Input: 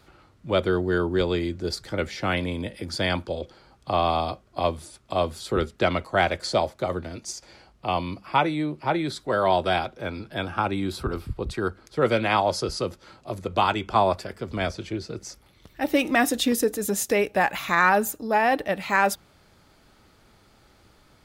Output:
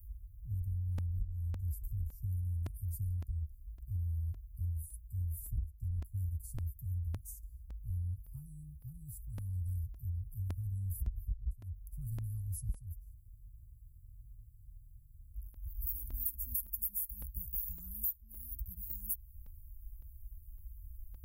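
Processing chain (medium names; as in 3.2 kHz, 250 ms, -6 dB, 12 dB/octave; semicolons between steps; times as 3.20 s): inverse Chebyshev band-stop 340–3800 Hz, stop band 80 dB; compression 10:1, threshold -50 dBFS, peak gain reduction 20.5 dB; crackling interface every 0.56 s, samples 128, repeat, from 0.98 s; spectral freeze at 13.16 s, 2.21 s; trim +17 dB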